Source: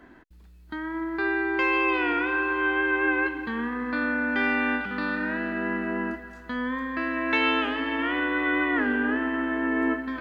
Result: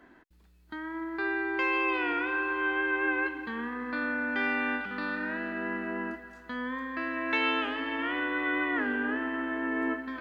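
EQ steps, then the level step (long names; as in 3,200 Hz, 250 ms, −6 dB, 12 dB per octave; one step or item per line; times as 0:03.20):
low-shelf EQ 180 Hz −7 dB
−4.0 dB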